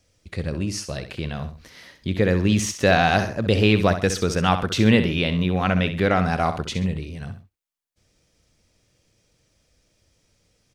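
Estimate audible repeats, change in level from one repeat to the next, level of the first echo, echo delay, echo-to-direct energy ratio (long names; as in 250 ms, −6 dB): 2, −9.0 dB, −10.0 dB, 65 ms, −9.5 dB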